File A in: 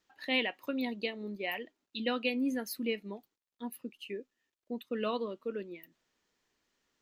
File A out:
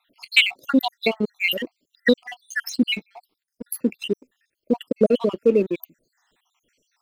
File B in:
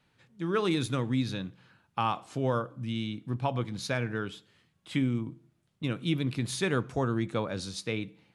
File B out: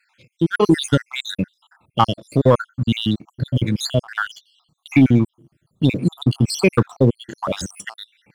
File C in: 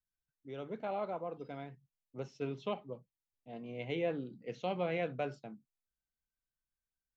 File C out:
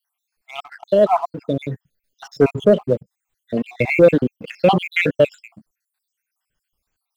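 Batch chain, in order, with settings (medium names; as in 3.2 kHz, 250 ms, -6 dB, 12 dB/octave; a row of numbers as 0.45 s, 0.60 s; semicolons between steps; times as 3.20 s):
random holes in the spectrogram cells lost 72%; waveshaping leveller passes 1; peak normalisation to -2 dBFS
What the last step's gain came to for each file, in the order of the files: +17.0 dB, +14.0 dB, +23.0 dB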